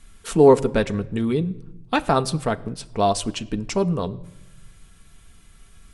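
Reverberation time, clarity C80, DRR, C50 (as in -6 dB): no single decay rate, 22.0 dB, 7.5 dB, 20.5 dB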